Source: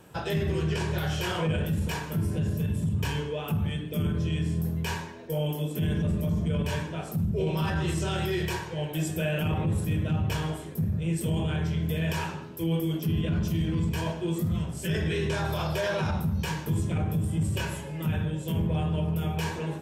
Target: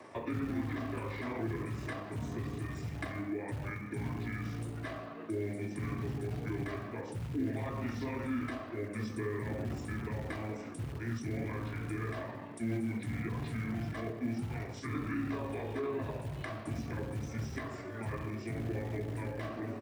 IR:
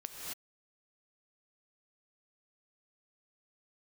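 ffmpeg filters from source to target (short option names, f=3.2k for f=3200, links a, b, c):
-filter_complex "[0:a]acrossover=split=410[a][b];[b]acompressor=threshold=-45dB:ratio=10[c];[a][c]amix=inputs=2:normalize=0,asetrate=30296,aresample=44100,atempo=1.45565,acrusher=bits=8:mode=log:mix=0:aa=0.000001,highpass=110,acrossover=split=310 2900:gain=0.178 1 0.224[d][e][f];[d][e][f]amix=inputs=3:normalize=0,volume=6.5dB"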